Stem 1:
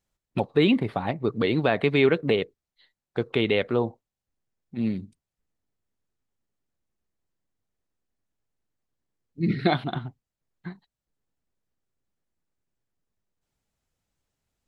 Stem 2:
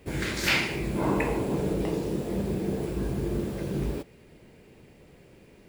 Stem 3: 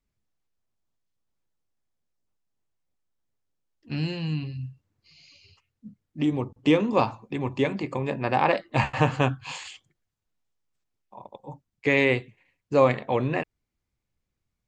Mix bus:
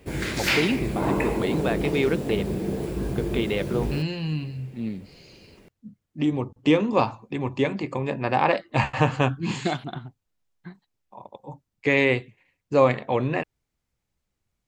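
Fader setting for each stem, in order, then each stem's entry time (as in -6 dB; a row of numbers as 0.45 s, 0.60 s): -4.0 dB, +1.5 dB, +1.0 dB; 0.00 s, 0.00 s, 0.00 s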